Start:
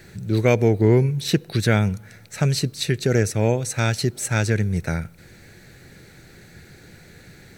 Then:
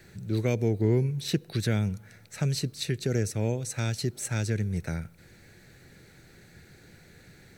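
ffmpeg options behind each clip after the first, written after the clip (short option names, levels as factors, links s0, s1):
-filter_complex "[0:a]acrossover=split=440|3000[s0][s1][s2];[s1]acompressor=threshold=0.02:ratio=2[s3];[s0][s3][s2]amix=inputs=3:normalize=0,volume=0.447"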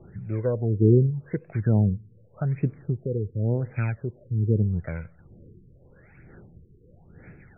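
-af "aphaser=in_gain=1:out_gain=1:delay=2:decay=0.55:speed=1.1:type=sinusoidal,afftfilt=real='re*lt(b*sr/1024,460*pow(2700/460,0.5+0.5*sin(2*PI*0.85*pts/sr)))':imag='im*lt(b*sr/1024,460*pow(2700/460,0.5+0.5*sin(2*PI*0.85*pts/sr)))':win_size=1024:overlap=0.75"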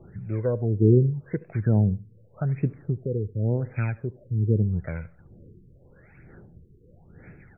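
-af "aecho=1:1:74|148:0.075|0.0217"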